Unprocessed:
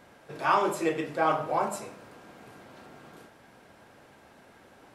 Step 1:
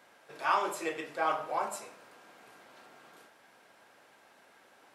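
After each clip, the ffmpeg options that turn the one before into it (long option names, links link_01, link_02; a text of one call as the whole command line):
ffmpeg -i in.wav -af "highpass=frequency=790:poles=1,volume=-2dB" out.wav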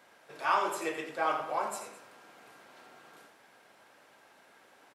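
ffmpeg -i in.wav -af "aecho=1:1:86|212:0.355|0.126" out.wav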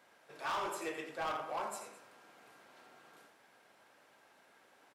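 ffmpeg -i in.wav -af "asoftclip=type=hard:threshold=-28dB,volume=-5dB" out.wav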